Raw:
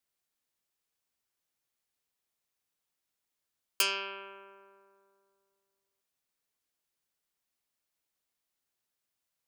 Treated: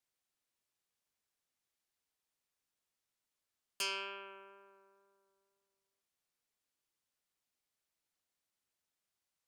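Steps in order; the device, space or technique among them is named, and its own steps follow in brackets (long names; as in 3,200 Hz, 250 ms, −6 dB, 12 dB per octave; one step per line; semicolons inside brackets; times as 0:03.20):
compact cassette (soft clipping −27.5 dBFS, distortion −8 dB; low-pass filter 11,000 Hz 12 dB per octave; tape wow and flutter 9.7 cents; white noise bed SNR 41 dB)
level −3.5 dB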